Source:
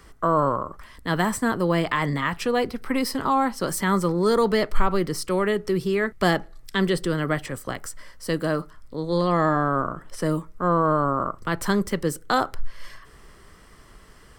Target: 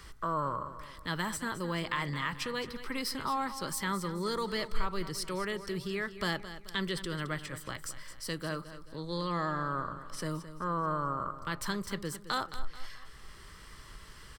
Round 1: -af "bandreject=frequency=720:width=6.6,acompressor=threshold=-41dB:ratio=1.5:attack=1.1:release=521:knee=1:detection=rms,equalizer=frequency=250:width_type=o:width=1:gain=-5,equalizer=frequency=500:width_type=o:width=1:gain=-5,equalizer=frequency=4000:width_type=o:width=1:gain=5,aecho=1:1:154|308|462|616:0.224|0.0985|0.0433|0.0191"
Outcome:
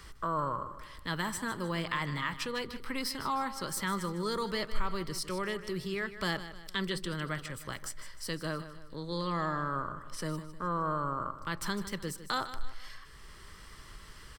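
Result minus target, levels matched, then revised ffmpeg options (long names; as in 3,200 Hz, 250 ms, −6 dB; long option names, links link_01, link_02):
echo 63 ms early
-af "bandreject=frequency=720:width=6.6,acompressor=threshold=-41dB:ratio=1.5:attack=1.1:release=521:knee=1:detection=rms,equalizer=frequency=250:width_type=o:width=1:gain=-5,equalizer=frequency=500:width_type=o:width=1:gain=-5,equalizer=frequency=4000:width_type=o:width=1:gain=5,aecho=1:1:217|434|651|868:0.224|0.0985|0.0433|0.0191"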